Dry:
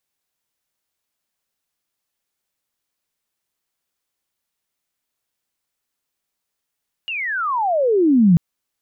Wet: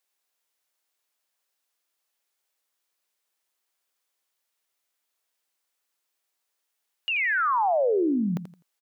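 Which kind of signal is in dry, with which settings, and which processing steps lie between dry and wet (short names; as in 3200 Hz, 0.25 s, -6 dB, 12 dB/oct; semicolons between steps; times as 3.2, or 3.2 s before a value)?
chirp logarithmic 2900 Hz -> 160 Hz -23 dBFS -> -8 dBFS 1.29 s
HPF 400 Hz 12 dB/oct; compressor 2.5:1, threshold -23 dBFS; feedback echo 84 ms, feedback 24%, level -11 dB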